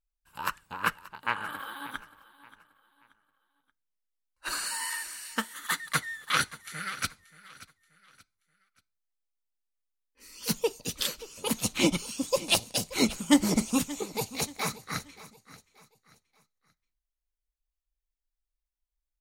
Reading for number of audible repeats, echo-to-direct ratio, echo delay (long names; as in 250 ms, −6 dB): 2, −17.5 dB, 580 ms